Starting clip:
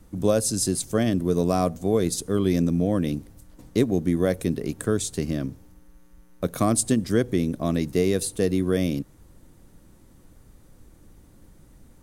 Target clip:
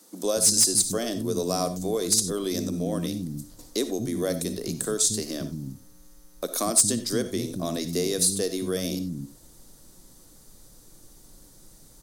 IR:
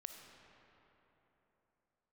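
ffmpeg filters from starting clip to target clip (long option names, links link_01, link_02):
-filter_complex "[0:a]equalizer=frequency=69:width_type=o:width=1.3:gain=-11.5,acrossover=split=240[link_01][link_02];[link_01]adelay=230[link_03];[link_03][link_02]amix=inputs=2:normalize=0[link_04];[1:a]atrim=start_sample=2205,atrim=end_sample=4410[link_05];[link_04][link_05]afir=irnorm=-1:irlink=0,asplit=2[link_06][link_07];[link_07]acompressor=threshold=-37dB:ratio=6,volume=1.5dB[link_08];[link_06][link_08]amix=inputs=2:normalize=0,highshelf=frequency=3400:width_type=q:width=1.5:gain=9.5,asoftclip=type=hard:threshold=-12dB"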